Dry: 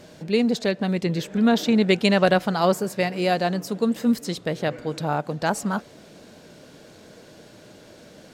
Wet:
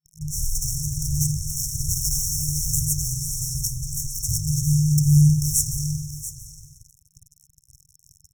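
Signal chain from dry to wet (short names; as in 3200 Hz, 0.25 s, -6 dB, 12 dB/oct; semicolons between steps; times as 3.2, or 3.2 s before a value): 3.02–3.89 resonator 63 Hz, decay 0.29 s, harmonics all, mix 70%; spring tank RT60 1.1 s, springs 47 ms, chirp 45 ms, DRR -0.5 dB; fuzz box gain 29 dB, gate -36 dBFS; on a send: echo 0.682 s -12.5 dB; on the sum: FFT band-reject 160–5400 Hz; gain +6 dB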